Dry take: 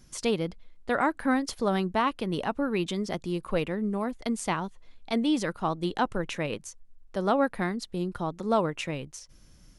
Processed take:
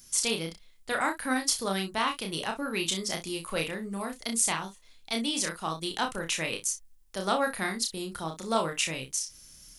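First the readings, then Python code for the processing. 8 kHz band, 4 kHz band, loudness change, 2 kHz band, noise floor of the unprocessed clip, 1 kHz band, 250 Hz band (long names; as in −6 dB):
+13.0 dB, +7.0 dB, −1.0 dB, +2.0 dB, −55 dBFS, −2.5 dB, −6.0 dB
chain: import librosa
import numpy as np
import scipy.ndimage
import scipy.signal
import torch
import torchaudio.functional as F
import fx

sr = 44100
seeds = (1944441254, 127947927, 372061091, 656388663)

p1 = librosa.effects.preemphasis(x, coef=0.9, zi=[0.0])
p2 = fx.rider(p1, sr, range_db=10, speed_s=2.0)
p3 = p1 + (p2 * 10.0 ** (0.0 / 20.0))
p4 = fx.room_early_taps(p3, sr, ms=(31, 61), db=(-4.0, -13.0))
y = p4 * 10.0 ** (5.5 / 20.0)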